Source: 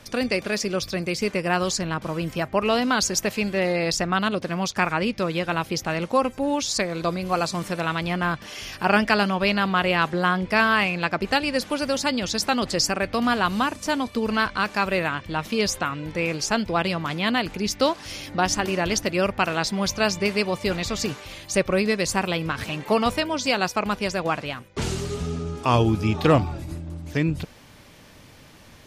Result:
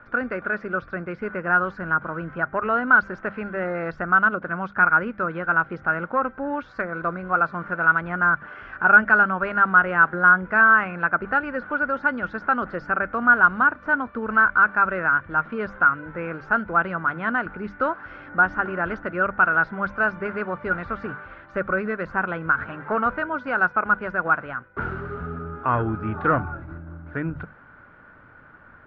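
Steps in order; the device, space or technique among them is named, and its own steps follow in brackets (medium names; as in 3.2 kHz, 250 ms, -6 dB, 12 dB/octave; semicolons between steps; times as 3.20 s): hum notches 50/100/150/200 Hz; overdriven synthesiser ladder filter (saturation -12 dBFS, distortion -19 dB; four-pole ladder low-pass 1.5 kHz, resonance 85%); trim +8.5 dB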